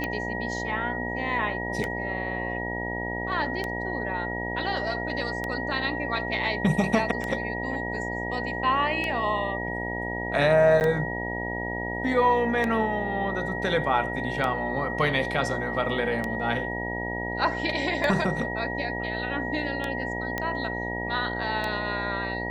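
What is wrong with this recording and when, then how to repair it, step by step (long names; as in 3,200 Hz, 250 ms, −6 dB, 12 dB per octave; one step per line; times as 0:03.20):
mains buzz 60 Hz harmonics 16 −33 dBFS
scratch tick 33 1/3 rpm −15 dBFS
whistle 1,900 Hz −32 dBFS
0:10.80–0:10.81: drop-out 9.6 ms
0:20.38: click −14 dBFS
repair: click removal
hum removal 60 Hz, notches 16
notch filter 1,900 Hz, Q 30
repair the gap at 0:10.80, 9.6 ms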